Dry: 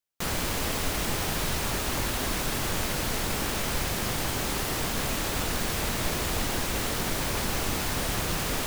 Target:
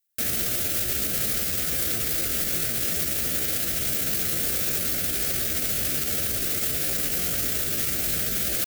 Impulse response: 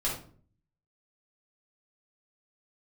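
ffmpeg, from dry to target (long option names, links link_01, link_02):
-filter_complex "[0:a]asuperstop=centerf=730:order=4:qfactor=1.6,alimiter=limit=-24dB:level=0:latency=1:release=12,aemphasis=mode=production:type=50fm,asplit=2[link_01][link_02];[1:a]atrim=start_sample=2205,lowshelf=frequency=350:gain=2,adelay=6[link_03];[link_02][link_03]afir=irnorm=-1:irlink=0,volume=-26.5dB[link_04];[link_01][link_04]amix=inputs=2:normalize=0,asetrate=57191,aresample=44100,atempo=0.771105,highpass=48,volume=1.5dB"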